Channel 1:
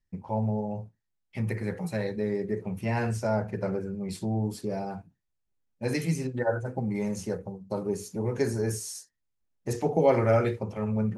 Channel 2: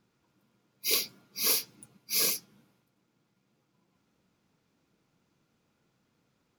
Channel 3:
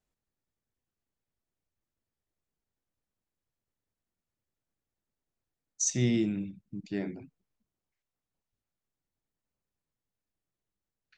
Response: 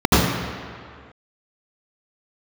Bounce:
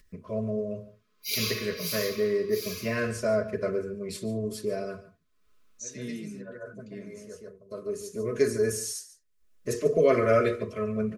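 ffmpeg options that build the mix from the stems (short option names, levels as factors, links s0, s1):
-filter_complex "[0:a]equalizer=f=190:w=2.6:g=-12.5,volume=1.26,asplit=2[s0][s1];[s1]volume=0.158[s2];[1:a]highpass=1000,aeval=exprs='0.282*(cos(1*acos(clip(val(0)/0.282,-1,1)))-cos(1*PI/2))+0.0112*(cos(7*acos(clip(val(0)/0.282,-1,1)))-cos(7*PI/2))':c=same,adelay=400,volume=0.473,afade=t=out:st=1.7:d=0.34:silence=0.354813,asplit=2[s3][s4];[s4]volume=0.188[s5];[2:a]volume=0.251,asplit=2[s6][s7];[s7]apad=whole_len=492891[s8];[s0][s8]sidechaincompress=threshold=0.001:ratio=5:attack=5.2:release=950[s9];[3:a]atrim=start_sample=2205[s10];[s5][s10]afir=irnorm=-1:irlink=0[s11];[s2]aecho=0:1:143:1[s12];[s9][s3][s6][s11][s12]amix=inputs=5:normalize=0,aecho=1:1:4.7:0.6,acompressor=mode=upward:threshold=0.00316:ratio=2.5,asuperstop=centerf=820:order=8:qfactor=2.5"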